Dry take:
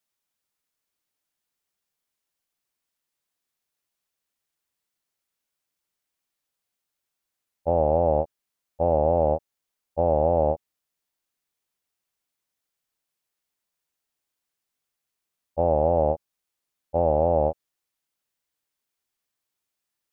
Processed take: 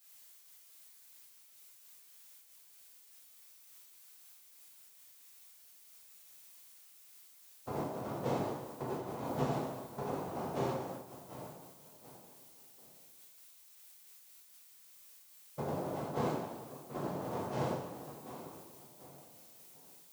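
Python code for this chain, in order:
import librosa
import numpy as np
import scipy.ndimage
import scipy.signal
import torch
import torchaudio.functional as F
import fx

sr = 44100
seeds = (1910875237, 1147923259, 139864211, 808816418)

p1 = fx.peak_eq(x, sr, hz=150.0, db=12.0, octaves=0.2)
p2 = fx.comb_fb(p1, sr, f0_hz=140.0, decay_s=0.75, harmonics='odd', damping=0.0, mix_pct=100)
p3 = fx.over_compress(p2, sr, threshold_db=-50.0, ratio=-0.5)
p4 = p3 + fx.echo_feedback(p3, sr, ms=739, feedback_pct=34, wet_db=-13, dry=0)
p5 = fx.noise_vocoder(p4, sr, seeds[0], bands=2)
p6 = fx.lowpass(p5, sr, hz=1200.0, slope=6)
p7 = fx.dmg_noise_colour(p6, sr, seeds[1], colour='blue', level_db=-75.0)
p8 = fx.rev_plate(p7, sr, seeds[2], rt60_s=1.1, hf_ratio=0.9, predelay_ms=0, drr_db=-5.5)
p9 = fx.am_noise(p8, sr, seeds[3], hz=5.7, depth_pct=55)
y = p9 * 10.0 ** (12.0 / 20.0)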